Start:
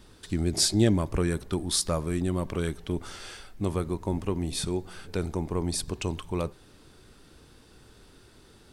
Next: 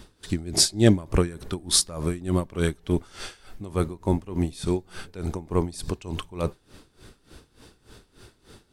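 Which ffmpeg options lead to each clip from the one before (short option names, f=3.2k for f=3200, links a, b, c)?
-af "aeval=exprs='val(0)*pow(10,-19*(0.5-0.5*cos(2*PI*3.4*n/s))/20)':c=same,volume=7.5dB"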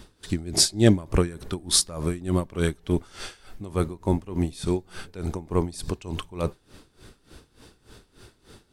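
-af anull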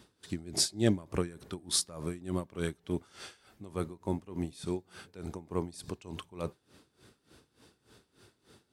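-af "highpass=98,volume=-9dB"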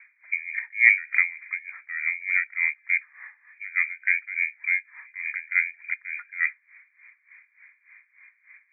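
-af "lowpass=f=2.1k:t=q:w=0.5098,lowpass=f=2.1k:t=q:w=0.6013,lowpass=f=2.1k:t=q:w=0.9,lowpass=f=2.1k:t=q:w=2.563,afreqshift=-2500,highpass=f=1.8k:t=q:w=7.3"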